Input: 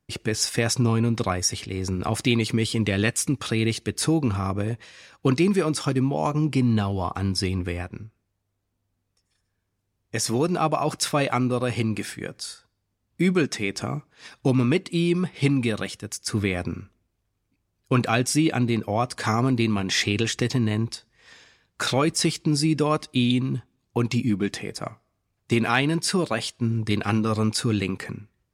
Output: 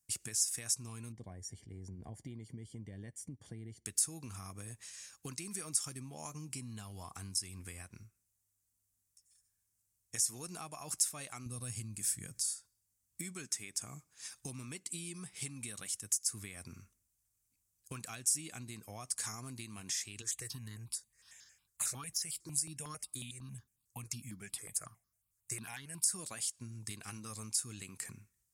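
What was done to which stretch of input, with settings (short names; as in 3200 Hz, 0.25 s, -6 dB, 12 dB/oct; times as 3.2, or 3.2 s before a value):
1.12–3.86 running mean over 34 samples
11.46–12.41 tone controls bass +13 dB, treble +5 dB
20.22–26.12 step phaser 11 Hz 750–2500 Hz
whole clip: passive tone stack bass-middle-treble 5-5-5; compressor 4:1, threshold -44 dBFS; resonant high shelf 5400 Hz +13.5 dB, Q 1.5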